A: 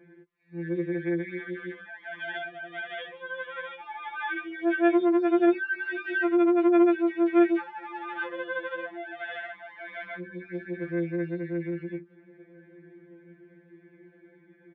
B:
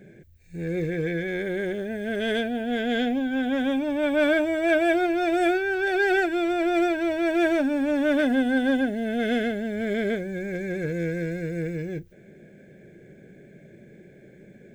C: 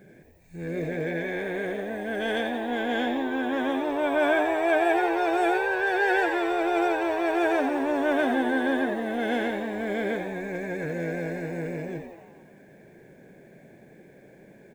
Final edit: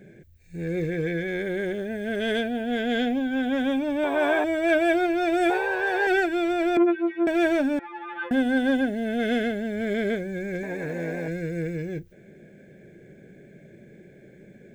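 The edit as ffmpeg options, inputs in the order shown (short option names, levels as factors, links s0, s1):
-filter_complex "[2:a]asplit=3[s0][s1][s2];[0:a]asplit=2[s3][s4];[1:a]asplit=6[s5][s6][s7][s8][s9][s10];[s5]atrim=end=4.042[s11];[s0]atrim=start=4.038:end=4.442[s12];[s6]atrim=start=4.438:end=5.502[s13];[s1]atrim=start=5.498:end=6.072[s14];[s7]atrim=start=6.068:end=6.772[s15];[s3]atrim=start=6.768:end=7.272[s16];[s8]atrim=start=7.268:end=7.792[s17];[s4]atrim=start=7.788:end=8.312[s18];[s9]atrim=start=8.308:end=10.632[s19];[s2]atrim=start=10.628:end=11.282[s20];[s10]atrim=start=11.278[s21];[s11][s12]acrossfade=d=0.004:c1=hsin:c2=hsin[s22];[s22][s13]acrossfade=d=0.004:c1=hsin:c2=hsin[s23];[s23][s14]acrossfade=d=0.004:c1=hsin:c2=hsin[s24];[s24][s15]acrossfade=d=0.004:c1=hsin:c2=hsin[s25];[s25][s16]acrossfade=d=0.004:c1=hsin:c2=hsin[s26];[s26][s17]acrossfade=d=0.004:c1=hsin:c2=hsin[s27];[s27][s18]acrossfade=d=0.004:c1=hsin:c2=hsin[s28];[s28][s19]acrossfade=d=0.004:c1=hsin:c2=hsin[s29];[s29][s20]acrossfade=d=0.004:c1=hsin:c2=hsin[s30];[s30][s21]acrossfade=d=0.004:c1=hsin:c2=hsin"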